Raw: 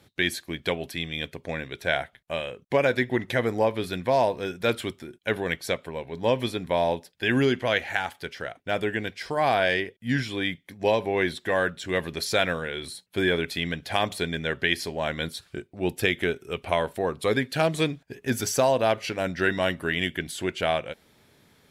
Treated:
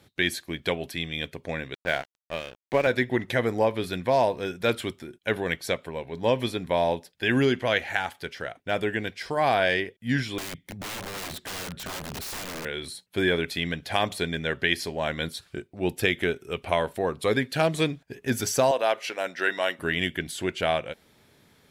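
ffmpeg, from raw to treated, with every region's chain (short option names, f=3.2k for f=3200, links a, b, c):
-filter_complex "[0:a]asettb=1/sr,asplit=3[a][b][c];[a]atrim=end=1.744[d];[b]atrim=start=1.74:end=2.87,asetpts=PTS-STARTPTS,afade=t=in:d=0.004:c=qsin,afade=t=out:st=1.126:d=0.004:c=qsin,highpass=100,lowpass=3.4k,aeval=exprs='sgn(val(0))*max(abs(val(0))-0.015,0)':c=same[e];[c]atrim=start=2.866[f];[d][e]acrossfade=d=0.004:c1=hsin:c2=qsin[g];[g][f]acrossfade=d=0.004:c1=qsin:c2=hsin,asettb=1/sr,asplit=3[h][i][j];[h]atrim=end=10.384[k];[i]atrim=start=10.38:end=12.65,asetpts=PTS-STARTPTS,afade=t=in:d=0.004:c=qsin,afade=t=out:st=2.266:d=0.004:c=qsin,lowshelf=f=240:g=10.5,acompressor=threshold=-29dB:ratio=3:attack=3.2:release=140:knee=1:detection=peak,aeval=exprs='(mod(31.6*val(0)+1,2)-1)/31.6':c=same[l];[j]atrim=start=12.646[m];[k][l]acrossfade=d=0.004:c1=hsin:c2=qsin[n];[n][m]acrossfade=d=0.004:c1=qsin:c2=hsin,asettb=1/sr,asplit=3[o][p][q];[o]atrim=end=18.714[r];[p]atrim=start=18.71:end=19.79,asetpts=PTS-STARTPTS,afade=t=in:d=0.004:c=qsin,afade=t=out:st=1.076:d=0.004:c=qsin,highpass=480,bandreject=f=4.6k:w=17[s];[q]atrim=start=19.786[t];[r][s]acrossfade=d=0.004:c1=hsin:c2=qsin[u];[u][t]acrossfade=d=0.004:c1=qsin:c2=hsin"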